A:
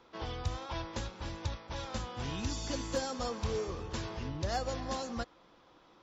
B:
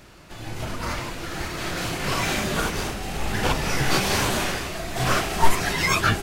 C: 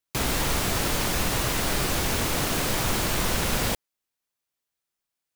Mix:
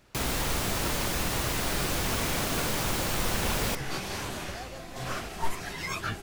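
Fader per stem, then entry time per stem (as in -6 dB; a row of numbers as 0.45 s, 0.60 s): -8.5 dB, -12.5 dB, -4.0 dB; 0.05 s, 0.00 s, 0.00 s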